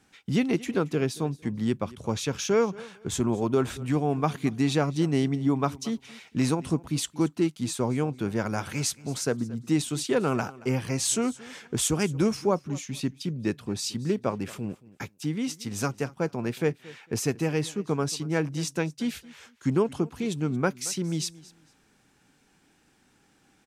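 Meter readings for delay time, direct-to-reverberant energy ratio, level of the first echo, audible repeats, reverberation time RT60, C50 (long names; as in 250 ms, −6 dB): 226 ms, no reverb audible, −20.5 dB, 2, no reverb audible, no reverb audible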